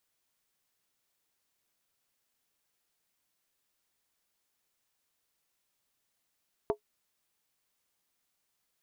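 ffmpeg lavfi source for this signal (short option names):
-f lavfi -i "aevalsrc='0.0891*pow(10,-3*t/0.1)*sin(2*PI*420*t)+0.0501*pow(10,-3*t/0.079)*sin(2*PI*669.5*t)+0.0282*pow(10,-3*t/0.068)*sin(2*PI*897.1*t)+0.0158*pow(10,-3*t/0.066)*sin(2*PI*964.3*t)+0.00891*pow(10,-3*t/0.061)*sin(2*PI*1114.3*t)':d=0.63:s=44100"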